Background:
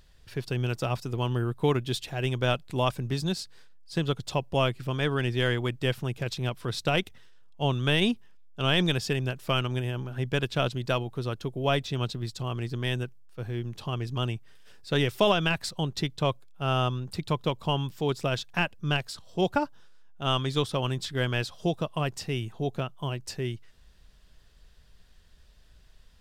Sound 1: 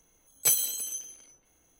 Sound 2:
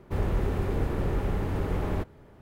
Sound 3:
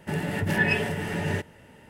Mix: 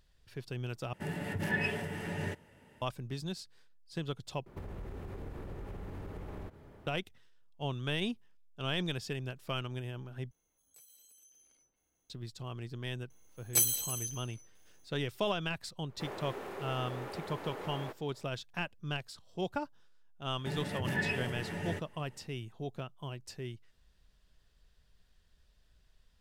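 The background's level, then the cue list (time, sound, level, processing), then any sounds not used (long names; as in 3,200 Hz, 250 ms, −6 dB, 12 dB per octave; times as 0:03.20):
background −10 dB
0:00.93: overwrite with 3 −9 dB
0:04.46: overwrite with 2 −2.5 dB + downward compressor 16 to 1, threshold −36 dBFS
0:10.31: overwrite with 1 −14 dB + downward compressor 4 to 1, threshold −47 dBFS
0:13.10: mix in 1 −3.5 dB
0:15.89: mix in 2 −5.5 dB + high-pass filter 450 Hz
0:20.38: mix in 3 −10 dB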